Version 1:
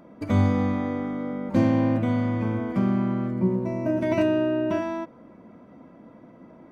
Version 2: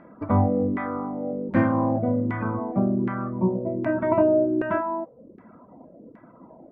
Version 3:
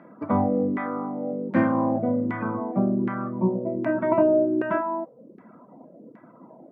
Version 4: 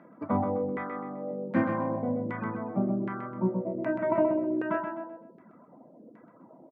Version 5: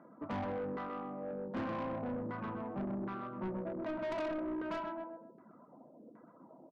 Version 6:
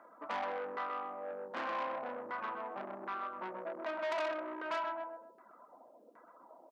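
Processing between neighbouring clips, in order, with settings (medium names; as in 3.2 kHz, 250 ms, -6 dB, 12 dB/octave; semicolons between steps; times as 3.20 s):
dynamic bell 1.5 kHz, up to +4 dB, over -40 dBFS, Q 0.81; LFO low-pass saw down 1.3 Hz 400–1900 Hz; reverb removal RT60 0.65 s
high-pass 130 Hz 24 dB/octave
reverb removal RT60 0.74 s; on a send: feedback delay 128 ms, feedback 33%, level -6 dB; on the sum: trim -4.5 dB
resonant high shelf 1.7 kHz -7 dB, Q 1.5; hum notches 60/120/180 Hz; saturation -30 dBFS, distortion -8 dB; trim -4.5 dB
high-pass 740 Hz 12 dB/octave; trim +6 dB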